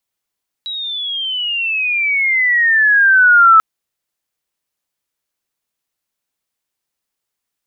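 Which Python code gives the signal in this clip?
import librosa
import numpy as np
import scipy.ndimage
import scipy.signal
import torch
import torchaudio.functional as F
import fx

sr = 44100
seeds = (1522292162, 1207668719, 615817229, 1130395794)

y = fx.chirp(sr, length_s=2.94, from_hz=3900.0, to_hz=1300.0, law='logarithmic', from_db=-21.5, to_db=-4.0)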